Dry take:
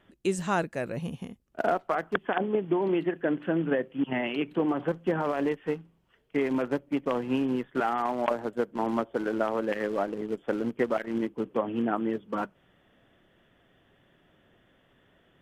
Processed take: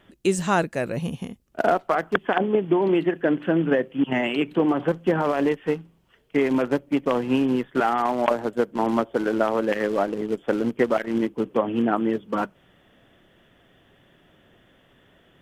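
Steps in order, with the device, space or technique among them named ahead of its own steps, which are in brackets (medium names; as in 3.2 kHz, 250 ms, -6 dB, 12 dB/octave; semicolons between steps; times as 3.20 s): exciter from parts (in parallel at -9 dB: high-pass 2.2 kHz 12 dB/octave + saturation -38 dBFS, distortion -9 dB); on the sum: trim +6 dB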